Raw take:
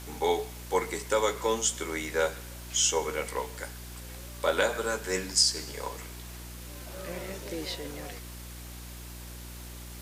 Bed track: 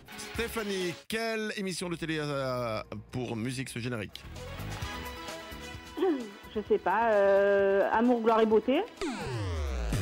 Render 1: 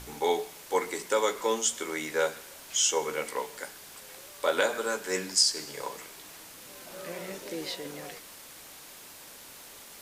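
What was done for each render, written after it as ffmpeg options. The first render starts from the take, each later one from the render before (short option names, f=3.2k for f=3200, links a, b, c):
-af "bandreject=f=60:t=h:w=4,bandreject=f=120:t=h:w=4,bandreject=f=180:t=h:w=4,bandreject=f=240:t=h:w=4,bandreject=f=300:t=h:w=4,bandreject=f=360:t=h:w=4"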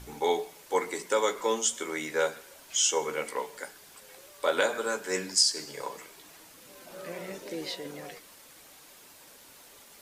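-af "afftdn=nr=6:nf=-48"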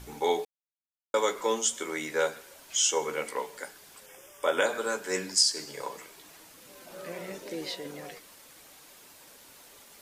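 -filter_complex "[0:a]asettb=1/sr,asplit=3[a][b][c];[a]atrim=end=4.064[d];[b]atrim=start=4.06:end=4.66,asetpts=PTS-STARTPTS,afade=t=in:d=0.004:c=qsin,afade=t=out:st=0.596:d=0.004:c=qsin,asuperstop=centerf=4200:order=8:qfactor=3.1[e];[c]atrim=start=4.656[f];[d][e]acrossfade=d=0.004:c1=hsin:c2=qsin[g];[g][f]acrossfade=d=0.004:c1=qsin:c2=hsin,asplit=3[h][i][j];[h]atrim=end=0.45,asetpts=PTS-STARTPTS,afade=t=out:st=0.446:d=0.004:c=hsin[k];[i]atrim=start=0.45:end=1.14,asetpts=PTS-STARTPTS,volume=0[l];[j]atrim=start=1.14,asetpts=PTS-STARTPTS,afade=t=in:d=0.004:c=hsin[m];[k][l][m]concat=n=3:v=0:a=1"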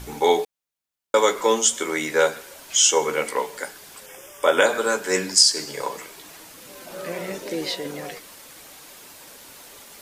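-af "volume=8.5dB,alimiter=limit=-2dB:level=0:latency=1"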